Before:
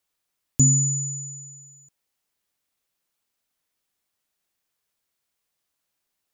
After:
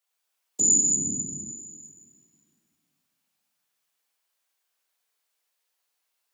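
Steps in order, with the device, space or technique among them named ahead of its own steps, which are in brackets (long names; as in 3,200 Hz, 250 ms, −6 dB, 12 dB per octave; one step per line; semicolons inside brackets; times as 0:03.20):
whispering ghost (random phases in short frames; high-pass filter 540 Hz 12 dB per octave; convolution reverb RT60 2.1 s, pre-delay 30 ms, DRR −3.5 dB)
0:00.96–0:01.52: bass and treble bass +10 dB, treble −3 dB
level −3 dB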